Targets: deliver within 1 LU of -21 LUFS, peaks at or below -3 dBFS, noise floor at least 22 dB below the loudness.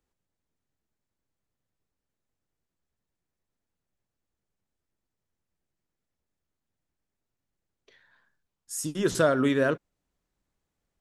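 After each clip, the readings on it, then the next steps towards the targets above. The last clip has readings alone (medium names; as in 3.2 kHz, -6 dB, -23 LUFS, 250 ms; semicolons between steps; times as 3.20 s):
loudness -26.5 LUFS; peak level -10.0 dBFS; loudness target -21.0 LUFS
-> trim +5.5 dB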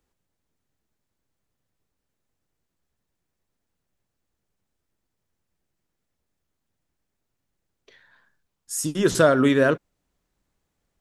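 loudness -21.0 LUFS; peak level -4.5 dBFS; noise floor -80 dBFS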